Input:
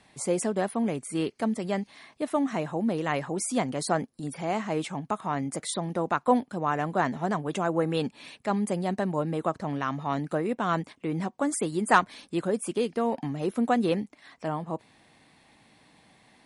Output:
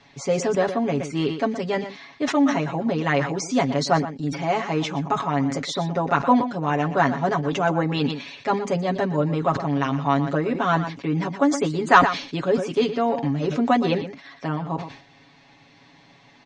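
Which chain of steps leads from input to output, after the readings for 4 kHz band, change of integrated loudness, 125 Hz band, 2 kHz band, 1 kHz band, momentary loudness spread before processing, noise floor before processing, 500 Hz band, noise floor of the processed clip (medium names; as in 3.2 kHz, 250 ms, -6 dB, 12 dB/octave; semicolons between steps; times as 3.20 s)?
+8.0 dB, +6.0 dB, +7.5 dB, +7.0 dB, +6.5 dB, 7 LU, -62 dBFS, +5.5 dB, -53 dBFS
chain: elliptic low-pass 6.3 kHz, stop band 60 dB; comb 7.2 ms, depth 93%; delay 120 ms -13.5 dB; decay stretcher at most 100 dB/s; trim +4 dB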